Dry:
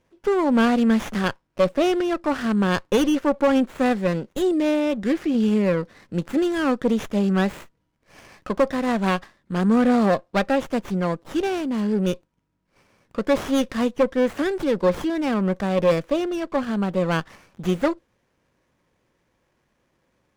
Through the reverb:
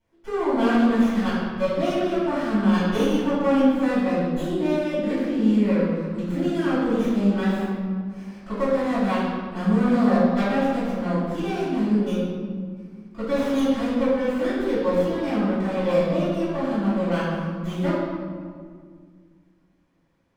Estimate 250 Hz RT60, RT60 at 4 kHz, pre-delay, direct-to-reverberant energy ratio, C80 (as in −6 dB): 2.6 s, 1.1 s, 3 ms, −14.0 dB, 0.5 dB